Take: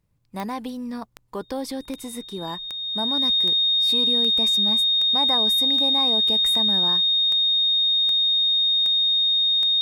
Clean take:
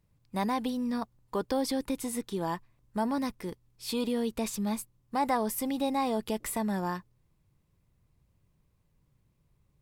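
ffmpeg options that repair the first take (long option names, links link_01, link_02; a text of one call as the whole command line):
ffmpeg -i in.wav -af "adeclick=threshold=4,bandreject=frequency=3700:width=30" out.wav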